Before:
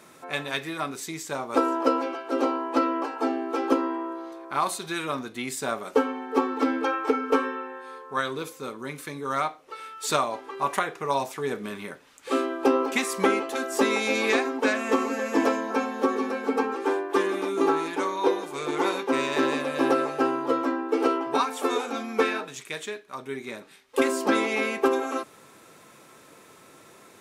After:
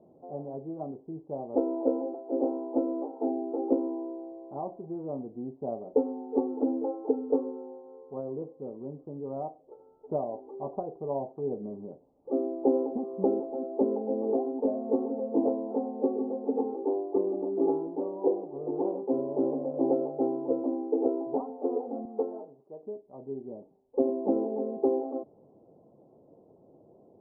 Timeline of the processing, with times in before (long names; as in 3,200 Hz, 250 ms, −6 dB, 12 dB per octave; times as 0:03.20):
0:22.05–0:22.83: RIAA equalisation recording
whole clip: Butterworth low-pass 770 Hz 48 dB per octave; level −2.5 dB